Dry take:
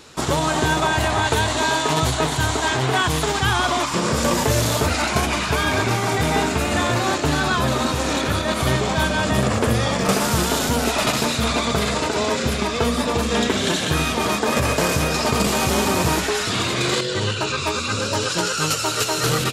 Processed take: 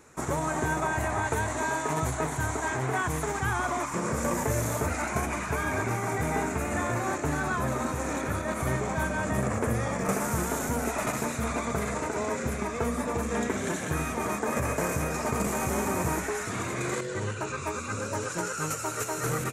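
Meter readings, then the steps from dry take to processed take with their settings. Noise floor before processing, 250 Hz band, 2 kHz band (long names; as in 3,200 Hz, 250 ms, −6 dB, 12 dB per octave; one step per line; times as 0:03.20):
−25 dBFS, −8.5 dB, −9.0 dB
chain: flat-topped bell 3,800 Hz −14 dB 1.1 octaves
level −8.5 dB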